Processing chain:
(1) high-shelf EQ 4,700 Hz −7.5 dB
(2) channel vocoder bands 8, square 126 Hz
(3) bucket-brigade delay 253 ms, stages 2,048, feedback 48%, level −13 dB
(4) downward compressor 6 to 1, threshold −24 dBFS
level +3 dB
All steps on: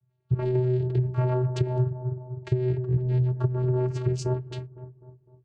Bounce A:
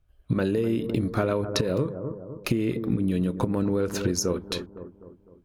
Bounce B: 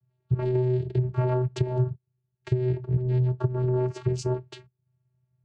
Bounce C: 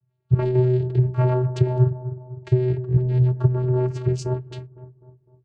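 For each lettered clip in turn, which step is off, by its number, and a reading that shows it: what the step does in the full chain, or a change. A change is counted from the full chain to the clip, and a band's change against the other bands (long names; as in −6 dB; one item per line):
2, 125 Hz band −9.0 dB
3, change in momentary loudness spread −7 LU
4, average gain reduction 3.0 dB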